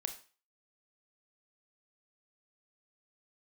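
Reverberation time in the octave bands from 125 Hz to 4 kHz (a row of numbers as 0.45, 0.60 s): 0.30, 0.35, 0.35, 0.40, 0.40, 0.35 s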